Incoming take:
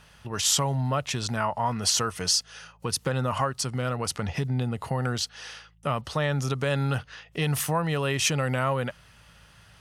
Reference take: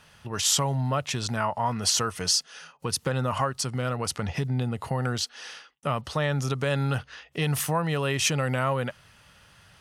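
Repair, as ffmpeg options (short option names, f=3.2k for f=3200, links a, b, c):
-af "bandreject=f=54.8:t=h:w=4,bandreject=f=109.6:t=h:w=4,bandreject=f=164.4:t=h:w=4"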